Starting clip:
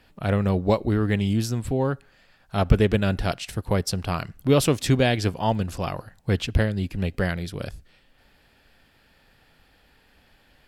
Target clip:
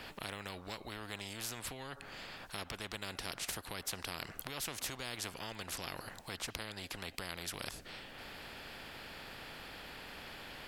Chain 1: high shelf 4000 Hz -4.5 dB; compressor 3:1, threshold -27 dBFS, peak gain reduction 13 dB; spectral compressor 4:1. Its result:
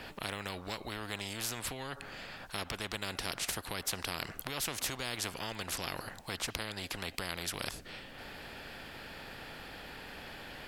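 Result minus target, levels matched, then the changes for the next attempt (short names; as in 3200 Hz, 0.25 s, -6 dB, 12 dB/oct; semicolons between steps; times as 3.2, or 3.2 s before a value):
compressor: peak gain reduction -4.5 dB
change: compressor 3:1, threshold -33.5 dBFS, peak gain reduction 17.5 dB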